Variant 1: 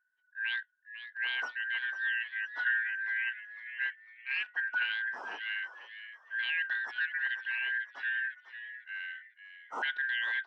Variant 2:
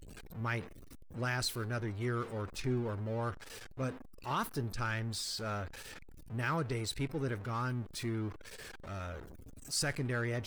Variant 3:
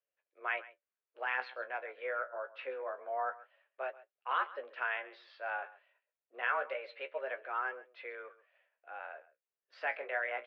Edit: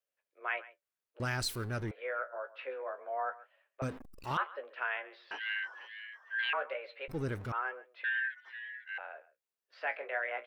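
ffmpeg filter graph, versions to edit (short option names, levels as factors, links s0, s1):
-filter_complex "[1:a]asplit=3[s0][s1][s2];[0:a]asplit=2[s3][s4];[2:a]asplit=6[s5][s6][s7][s8][s9][s10];[s5]atrim=end=1.202[s11];[s0]atrim=start=1.198:end=1.912[s12];[s6]atrim=start=1.908:end=3.822[s13];[s1]atrim=start=3.818:end=4.372[s14];[s7]atrim=start=4.368:end=5.312[s15];[s3]atrim=start=5.308:end=6.532[s16];[s8]atrim=start=6.528:end=7.082[s17];[s2]atrim=start=7.078:end=7.522[s18];[s9]atrim=start=7.518:end=8.042[s19];[s4]atrim=start=8.038:end=8.982[s20];[s10]atrim=start=8.978[s21];[s11][s12]acrossfade=d=0.004:c1=hsin:c2=hsin[s22];[s22][s13]acrossfade=d=0.004:c1=hsin:c2=hsin[s23];[s23][s14]acrossfade=d=0.004:c1=hsin:c2=hsin[s24];[s24][s15]acrossfade=d=0.004:c1=hsin:c2=hsin[s25];[s25][s16]acrossfade=d=0.004:c1=hsin:c2=hsin[s26];[s26][s17]acrossfade=d=0.004:c1=hsin:c2=hsin[s27];[s27][s18]acrossfade=d=0.004:c1=hsin:c2=hsin[s28];[s28][s19]acrossfade=d=0.004:c1=hsin:c2=hsin[s29];[s29][s20]acrossfade=d=0.004:c1=hsin:c2=hsin[s30];[s30][s21]acrossfade=d=0.004:c1=hsin:c2=hsin"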